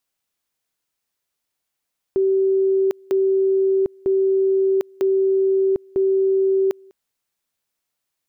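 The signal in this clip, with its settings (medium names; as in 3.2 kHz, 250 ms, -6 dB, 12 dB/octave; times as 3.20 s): two-level tone 385 Hz -14.5 dBFS, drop 29 dB, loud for 0.75 s, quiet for 0.20 s, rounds 5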